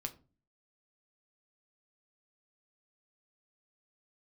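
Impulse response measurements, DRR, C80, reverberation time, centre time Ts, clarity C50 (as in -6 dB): 5.0 dB, 22.5 dB, 0.35 s, 6 ms, 17.5 dB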